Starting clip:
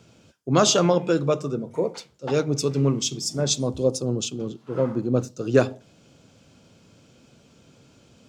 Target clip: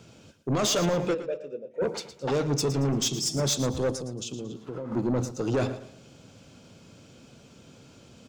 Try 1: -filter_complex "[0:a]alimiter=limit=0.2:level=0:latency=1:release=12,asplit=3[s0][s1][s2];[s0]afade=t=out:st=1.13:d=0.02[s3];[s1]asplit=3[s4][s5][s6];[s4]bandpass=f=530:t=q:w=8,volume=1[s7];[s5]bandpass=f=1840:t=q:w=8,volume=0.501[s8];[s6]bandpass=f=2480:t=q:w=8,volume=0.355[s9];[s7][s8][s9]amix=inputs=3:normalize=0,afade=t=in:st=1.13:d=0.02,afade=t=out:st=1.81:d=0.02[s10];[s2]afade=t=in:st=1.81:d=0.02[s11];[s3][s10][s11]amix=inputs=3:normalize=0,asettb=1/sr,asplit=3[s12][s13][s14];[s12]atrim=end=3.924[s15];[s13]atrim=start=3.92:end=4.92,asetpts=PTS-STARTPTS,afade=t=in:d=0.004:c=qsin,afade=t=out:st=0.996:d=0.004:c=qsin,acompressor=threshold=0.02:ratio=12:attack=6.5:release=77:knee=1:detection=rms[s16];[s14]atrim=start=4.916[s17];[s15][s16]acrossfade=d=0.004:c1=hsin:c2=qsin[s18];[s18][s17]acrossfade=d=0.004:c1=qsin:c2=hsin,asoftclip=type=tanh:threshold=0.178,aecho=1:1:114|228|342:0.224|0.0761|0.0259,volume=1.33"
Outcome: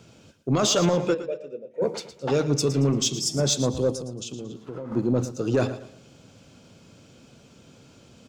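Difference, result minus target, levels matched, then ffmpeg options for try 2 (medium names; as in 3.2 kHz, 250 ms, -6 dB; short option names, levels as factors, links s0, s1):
saturation: distortion -11 dB
-filter_complex "[0:a]alimiter=limit=0.2:level=0:latency=1:release=12,asplit=3[s0][s1][s2];[s0]afade=t=out:st=1.13:d=0.02[s3];[s1]asplit=3[s4][s5][s6];[s4]bandpass=f=530:t=q:w=8,volume=1[s7];[s5]bandpass=f=1840:t=q:w=8,volume=0.501[s8];[s6]bandpass=f=2480:t=q:w=8,volume=0.355[s9];[s7][s8][s9]amix=inputs=3:normalize=0,afade=t=in:st=1.13:d=0.02,afade=t=out:st=1.81:d=0.02[s10];[s2]afade=t=in:st=1.81:d=0.02[s11];[s3][s10][s11]amix=inputs=3:normalize=0,asettb=1/sr,asplit=3[s12][s13][s14];[s12]atrim=end=3.924[s15];[s13]atrim=start=3.92:end=4.92,asetpts=PTS-STARTPTS,afade=t=in:d=0.004:c=qsin,afade=t=out:st=0.996:d=0.004:c=qsin,acompressor=threshold=0.02:ratio=12:attack=6.5:release=77:knee=1:detection=rms[s16];[s14]atrim=start=4.916[s17];[s15][s16]acrossfade=d=0.004:c1=hsin:c2=qsin[s18];[s18][s17]acrossfade=d=0.004:c1=qsin:c2=hsin,asoftclip=type=tanh:threshold=0.0668,aecho=1:1:114|228|342:0.224|0.0761|0.0259,volume=1.33"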